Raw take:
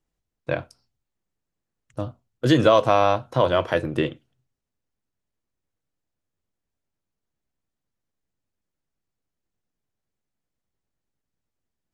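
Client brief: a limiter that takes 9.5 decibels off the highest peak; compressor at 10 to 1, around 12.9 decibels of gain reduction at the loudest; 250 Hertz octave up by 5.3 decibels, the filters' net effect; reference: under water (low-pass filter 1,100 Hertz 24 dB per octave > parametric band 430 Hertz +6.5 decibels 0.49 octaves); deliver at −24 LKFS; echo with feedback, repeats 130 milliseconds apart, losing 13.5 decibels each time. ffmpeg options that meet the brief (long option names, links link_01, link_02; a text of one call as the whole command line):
ffmpeg -i in.wav -af "equalizer=frequency=250:width_type=o:gain=5.5,acompressor=threshold=-23dB:ratio=10,alimiter=limit=-20dB:level=0:latency=1,lowpass=frequency=1100:width=0.5412,lowpass=frequency=1100:width=1.3066,equalizer=frequency=430:width_type=o:width=0.49:gain=6.5,aecho=1:1:130|260:0.211|0.0444,volume=8dB" out.wav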